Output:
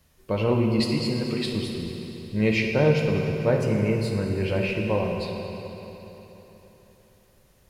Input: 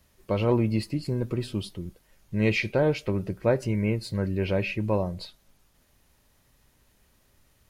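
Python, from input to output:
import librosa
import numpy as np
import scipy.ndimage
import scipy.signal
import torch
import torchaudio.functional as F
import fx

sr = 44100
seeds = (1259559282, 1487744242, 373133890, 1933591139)

y = fx.weighting(x, sr, curve='D', at=(0.8, 1.46))
y = fx.rev_fdn(y, sr, rt60_s=3.8, lf_ratio=1.0, hf_ratio=0.85, size_ms=39.0, drr_db=0.5)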